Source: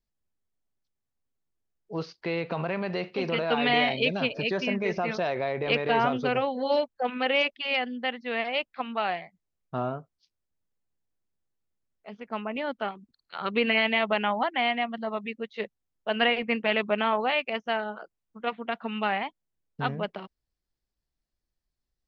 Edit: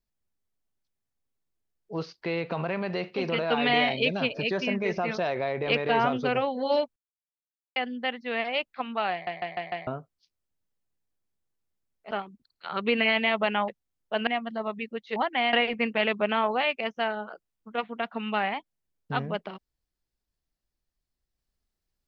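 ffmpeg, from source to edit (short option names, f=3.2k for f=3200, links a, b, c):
-filter_complex "[0:a]asplit=13[a][b][c][d][e][f][g][h][i][j][k][l][m];[a]atrim=end=6.96,asetpts=PTS-STARTPTS,afade=t=out:st=6.956:d=0.004:c=hsin[n];[b]atrim=start=6.96:end=7.76,asetpts=PTS-STARTPTS,volume=0[o];[c]atrim=start=7.76:end=9.272,asetpts=PTS-STARTPTS,afade=t=in:d=0.004:c=hsin[p];[d]atrim=start=9.118:end=9.272[q];[e]atrim=start=9.118:end=9.272[r];[f]atrim=start=9.118:end=9.272[s];[g]atrim=start=9.118:end=9.272[t];[h]atrim=start=9.868:end=12.112[u];[i]atrim=start=12.798:end=14.372[v];[j]atrim=start=15.628:end=16.222[w];[k]atrim=start=14.738:end=15.632[x];[l]atrim=start=14.368:end=14.742[y];[m]atrim=start=16.218[z];[n][o][p]concat=n=3:v=0:a=1[aa];[aa][q]acrossfade=d=0.004:c1=hsin:c2=hsin[ab];[ab][r]acrossfade=d=0.004:c1=hsin:c2=hsin[ac];[ac][s]acrossfade=d=0.004:c1=hsin:c2=hsin[ad];[ad][t]acrossfade=d=0.004:c1=hsin:c2=hsin[ae];[ae][u]acrossfade=d=0.004:c1=hsin:c2=hsin[af];[af][v]acrossfade=d=0.004:c1=hsin:c2=hsin[ag];[ag][w]acrossfade=d=0.004:c1=hsin:c2=hsin[ah];[ah][x]acrossfade=d=0.004:c1=hsin:c2=hsin[ai];[ai][y]acrossfade=d=0.004:c1=hsin:c2=hsin[aj];[aj][z]acrossfade=d=0.004:c1=hsin:c2=hsin"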